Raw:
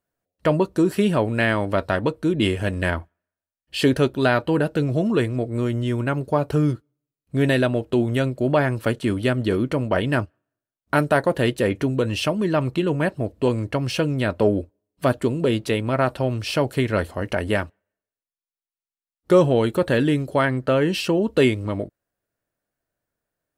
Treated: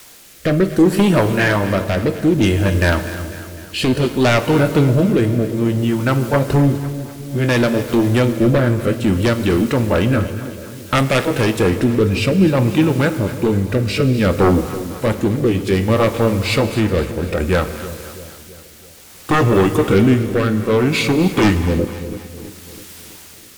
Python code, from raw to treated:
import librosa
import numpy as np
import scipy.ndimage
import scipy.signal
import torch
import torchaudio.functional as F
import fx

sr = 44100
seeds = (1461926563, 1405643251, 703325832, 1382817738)

p1 = fx.pitch_glide(x, sr, semitones=-3.5, runs='starting unshifted')
p2 = fx.quant_dither(p1, sr, seeds[0], bits=6, dither='triangular')
p3 = p1 + F.gain(torch.from_numpy(p2), -10.0).numpy()
p4 = fx.fold_sine(p3, sr, drive_db=10, ceiling_db=-2.5)
p5 = fx.rotary(p4, sr, hz=0.6)
p6 = p5 + fx.echo_split(p5, sr, split_hz=620.0, low_ms=328, high_ms=250, feedback_pct=52, wet_db=-13.5, dry=0)
p7 = fx.rev_fdn(p6, sr, rt60_s=1.8, lf_ratio=1.0, hf_ratio=0.9, size_ms=92.0, drr_db=9.5)
y = F.gain(torch.from_numpy(p7), -5.5).numpy()